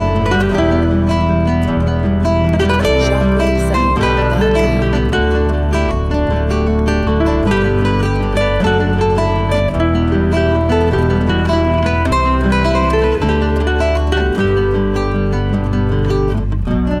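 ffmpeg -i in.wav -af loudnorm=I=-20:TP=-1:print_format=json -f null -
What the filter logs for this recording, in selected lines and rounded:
"input_i" : "-14.8",
"input_tp" : "-2.9",
"input_lra" : "2.0",
"input_thresh" : "-24.8",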